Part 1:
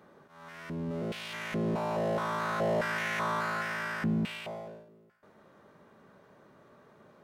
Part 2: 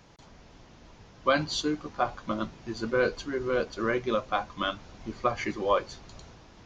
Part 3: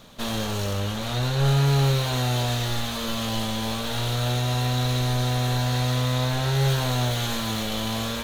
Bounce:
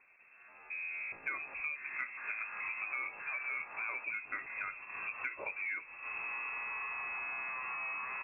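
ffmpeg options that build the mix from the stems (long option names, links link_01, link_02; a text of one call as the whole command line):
ffmpeg -i stem1.wav -i stem2.wav -i stem3.wav -filter_complex "[0:a]acompressor=threshold=-34dB:ratio=8,volume=-2.5dB[link_01];[1:a]equalizer=frequency=1000:width_type=o:width=0.44:gain=-8.5,volume=0dB,asplit=2[link_02][link_03];[2:a]equalizer=frequency=1600:width_type=o:width=0.45:gain=14.5,adelay=1250,volume=-14dB[link_04];[link_03]apad=whole_len=418395[link_05];[link_04][link_05]sidechaincompress=threshold=-36dB:ratio=10:attack=39:release=514[link_06];[link_01][link_02][link_06]amix=inputs=3:normalize=0,agate=range=-9dB:threshold=-42dB:ratio=16:detection=peak,lowpass=frequency=2300:width_type=q:width=0.5098,lowpass=frequency=2300:width_type=q:width=0.6013,lowpass=frequency=2300:width_type=q:width=0.9,lowpass=frequency=2300:width_type=q:width=2.563,afreqshift=-2700,acompressor=threshold=-37dB:ratio=6" out.wav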